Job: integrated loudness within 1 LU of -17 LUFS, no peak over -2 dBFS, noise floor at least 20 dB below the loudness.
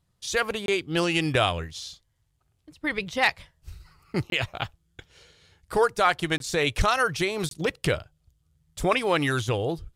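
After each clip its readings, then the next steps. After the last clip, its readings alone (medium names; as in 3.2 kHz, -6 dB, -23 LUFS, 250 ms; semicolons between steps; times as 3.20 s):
dropouts 4; longest dropout 22 ms; loudness -26.0 LUFS; peak level -7.5 dBFS; loudness target -17.0 LUFS
-> interpolate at 0.66/4.30/6.38/7.49 s, 22 ms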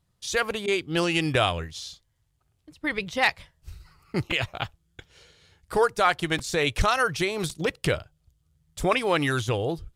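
dropouts 0; loudness -26.0 LUFS; peak level -7.5 dBFS; loudness target -17.0 LUFS
-> trim +9 dB; peak limiter -2 dBFS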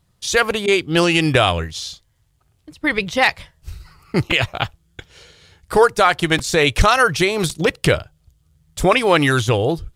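loudness -17.5 LUFS; peak level -2.0 dBFS; noise floor -62 dBFS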